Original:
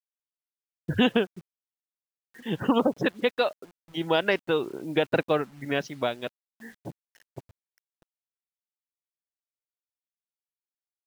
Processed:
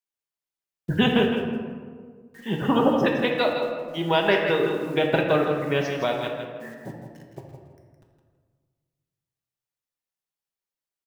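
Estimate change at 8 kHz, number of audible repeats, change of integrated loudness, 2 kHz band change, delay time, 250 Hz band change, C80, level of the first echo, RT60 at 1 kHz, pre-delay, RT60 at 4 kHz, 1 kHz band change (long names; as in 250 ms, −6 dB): can't be measured, 1, +3.5 dB, +3.5 dB, 164 ms, +4.0 dB, 3.5 dB, −7.5 dB, 1.6 s, 5 ms, 0.85 s, +5.0 dB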